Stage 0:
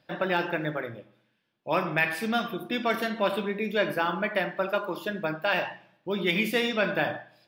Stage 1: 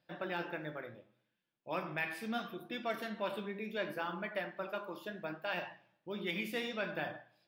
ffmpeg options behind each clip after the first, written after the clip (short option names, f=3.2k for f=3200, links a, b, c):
-af "flanger=delay=5.6:depth=9.7:regen=69:speed=0.71:shape=sinusoidal,volume=-7.5dB"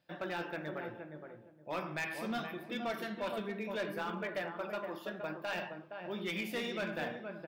-filter_complex "[0:a]asplit=2[a][b];[b]adelay=468,lowpass=f=890:p=1,volume=-5dB,asplit=2[c][d];[d]adelay=468,lowpass=f=890:p=1,volume=0.25,asplit=2[e][f];[f]adelay=468,lowpass=f=890:p=1,volume=0.25[g];[a][c][e][g]amix=inputs=4:normalize=0,asoftclip=type=hard:threshold=-32dB,volume=1dB"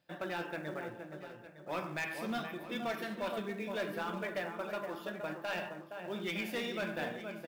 -filter_complex "[0:a]asplit=2[a][b];[b]acrusher=bits=3:mode=log:mix=0:aa=0.000001,volume=-7.5dB[c];[a][c]amix=inputs=2:normalize=0,aecho=1:1:909:0.2,volume=-3dB"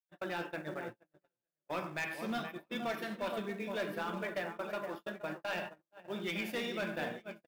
-af "agate=range=-44dB:threshold=-41dB:ratio=16:detection=peak"